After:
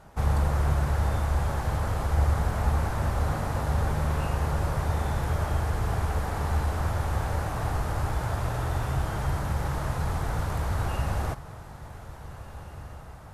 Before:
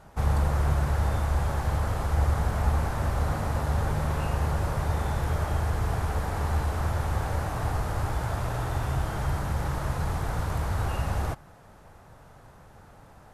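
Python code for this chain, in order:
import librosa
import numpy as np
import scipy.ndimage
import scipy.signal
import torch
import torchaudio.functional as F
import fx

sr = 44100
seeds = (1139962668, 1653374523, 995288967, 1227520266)

y = fx.echo_diffused(x, sr, ms=1669, feedback_pct=51, wet_db=-15.0)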